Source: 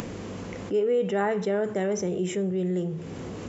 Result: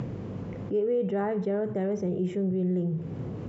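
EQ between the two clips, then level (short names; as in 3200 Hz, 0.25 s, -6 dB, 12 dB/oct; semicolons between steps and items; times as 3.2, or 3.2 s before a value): LPF 5100 Hz 12 dB/oct; tilt shelf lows +6 dB, about 1300 Hz; bell 130 Hz +12.5 dB 0.52 oct; -7.5 dB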